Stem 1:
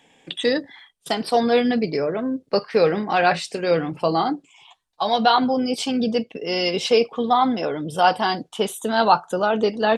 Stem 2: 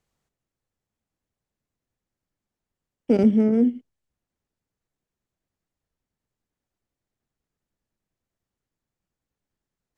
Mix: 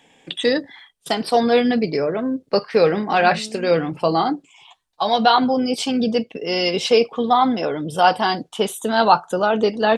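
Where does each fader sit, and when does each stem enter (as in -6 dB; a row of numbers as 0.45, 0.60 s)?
+2.0, -17.5 dB; 0.00, 0.00 s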